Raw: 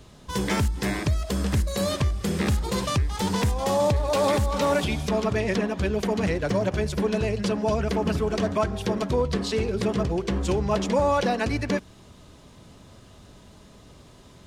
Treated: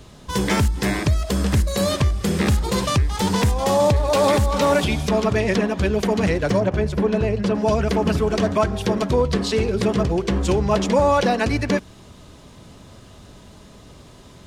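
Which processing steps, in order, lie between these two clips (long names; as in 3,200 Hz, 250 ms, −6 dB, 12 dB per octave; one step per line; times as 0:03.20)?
0:06.60–0:07.55: high-shelf EQ 3,200 Hz −11.5 dB
level +5 dB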